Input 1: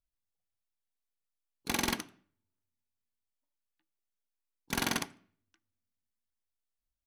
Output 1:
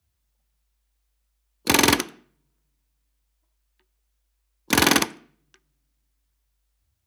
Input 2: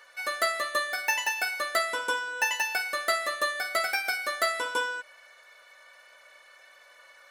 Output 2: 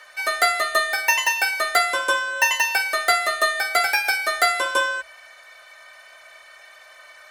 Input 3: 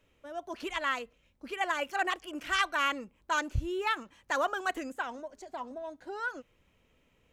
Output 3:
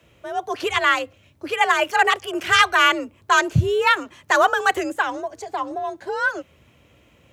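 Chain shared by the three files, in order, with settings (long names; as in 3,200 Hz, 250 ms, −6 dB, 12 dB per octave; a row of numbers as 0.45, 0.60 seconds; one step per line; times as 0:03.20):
frequency shifter +51 Hz
loudness normalisation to −20 LKFS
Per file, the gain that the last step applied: +14.0, +8.0, +13.0 decibels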